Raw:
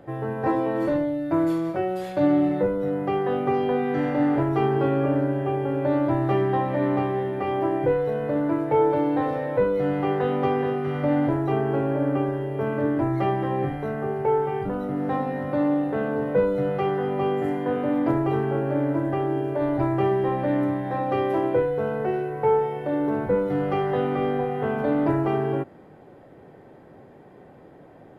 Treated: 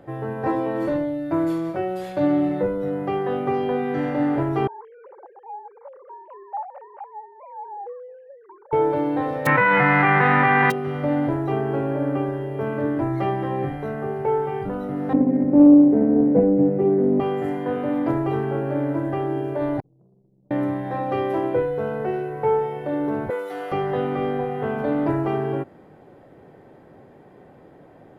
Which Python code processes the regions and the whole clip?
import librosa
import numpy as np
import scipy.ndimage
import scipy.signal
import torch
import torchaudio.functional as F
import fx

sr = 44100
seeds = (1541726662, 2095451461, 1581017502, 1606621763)

y = fx.chain(x, sr, fx.sine_speech(),
    fx.bandpass_q(hz=830.0, q=8.2),
    fx.tilt_eq(slope=2.0), at=(4.67, 8.73))
y = fx.envelope_flatten(y, sr, power=0.1, at=(9.45, 10.7), fade=0.02)
y = fx.cheby1_bandpass(y, sr, low_hz=120.0, high_hz=2000.0, order=4, at=(9.45, 10.7), fade=0.02)
y = fx.env_flatten(y, sr, amount_pct=100, at=(9.45, 10.7), fade=0.02)
y = fx.chain(y, sr, fx.curve_eq(hz=(130.0, 270.0, 1100.0, 2000.0, 3800.0, 5400.0), db=(0, 15, -16, -12, -28, -19)),
    fx.doppler_dist(depth_ms=0.28), at=(15.13, 17.2))
y = fx.chain(y, sr, fx.ladder_lowpass(hz=250.0, resonance_pct=30),
    fx.stiff_resonator(f0_hz=170.0, decay_s=0.47, stiffness=0.03),
    fx.transformer_sat(knee_hz=450.0), at=(19.8, 20.51))
y = fx.chain(y, sr, fx.highpass(hz=620.0, slope=12),
    fx.high_shelf(hz=3200.0, db=9.5),
    fx.comb(ms=2.6, depth=0.38), at=(23.3, 23.72))